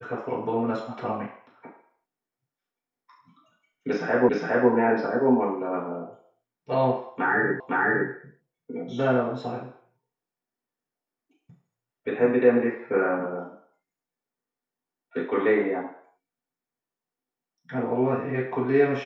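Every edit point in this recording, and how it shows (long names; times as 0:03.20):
0:04.29: the same again, the last 0.41 s
0:07.60: the same again, the last 0.51 s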